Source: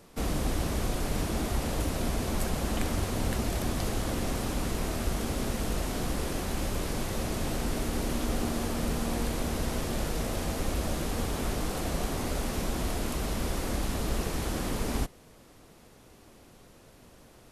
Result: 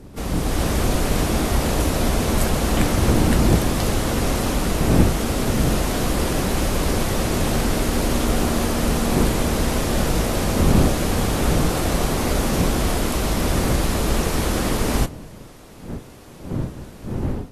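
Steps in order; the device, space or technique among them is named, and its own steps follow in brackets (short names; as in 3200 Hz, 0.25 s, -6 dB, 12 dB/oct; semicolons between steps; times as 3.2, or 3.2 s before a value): smartphone video outdoors (wind noise; AGC gain up to 7.5 dB; gain +2 dB; AAC 48 kbps 32000 Hz)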